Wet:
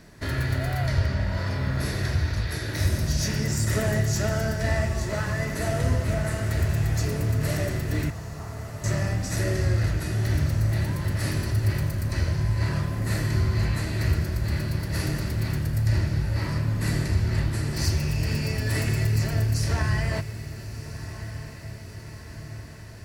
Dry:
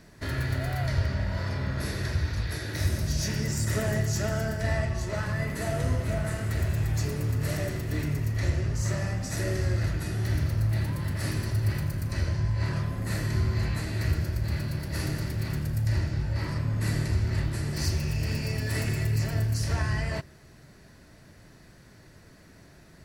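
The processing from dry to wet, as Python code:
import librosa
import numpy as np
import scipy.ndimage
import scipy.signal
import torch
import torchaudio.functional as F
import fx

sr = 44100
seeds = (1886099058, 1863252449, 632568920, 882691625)

p1 = fx.brickwall_bandpass(x, sr, low_hz=660.0, high_hz=1400.0, at=(8.1, 8.84))
p2 = p1 + fx.echo_diffused(p1, sr, ms=1339, feedback_pct=62, wet_db=-13.0, dry=0)
y = F.gain(torch.from_numpy(p2), 3.0).numpy()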